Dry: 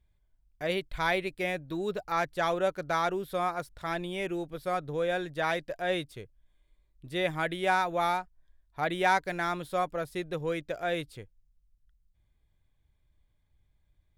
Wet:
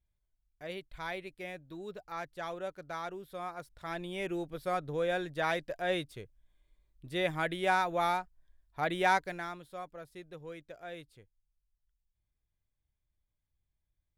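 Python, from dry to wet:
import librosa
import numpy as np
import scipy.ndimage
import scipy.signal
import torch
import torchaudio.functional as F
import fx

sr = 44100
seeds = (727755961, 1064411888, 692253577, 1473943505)

y = fx.gain(x, sr, db=fx.line((3.35, -11.0), (4.35, -2.0), (9.15, -2.0), (9.65, -13.5)))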